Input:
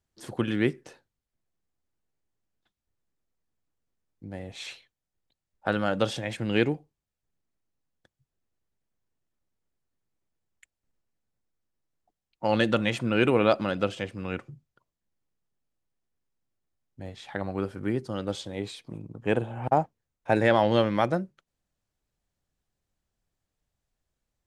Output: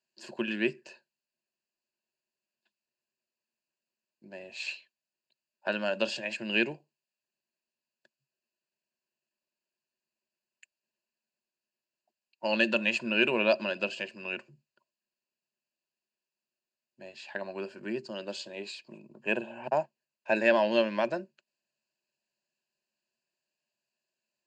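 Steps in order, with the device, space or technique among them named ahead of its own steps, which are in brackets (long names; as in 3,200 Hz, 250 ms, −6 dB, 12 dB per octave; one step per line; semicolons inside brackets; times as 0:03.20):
television speaker (loudspeaker in its box 210–7,700 Hz, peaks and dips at 260 Hz −8 dB, 410 Hz −4 dB, 1,200 Hz −7 dB, 2,600 Hz +8 dB, 5,000 Hz +7 dB)
EQ curve with evenly spaced ripples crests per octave 1.4, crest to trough 11 dB
level −4 dB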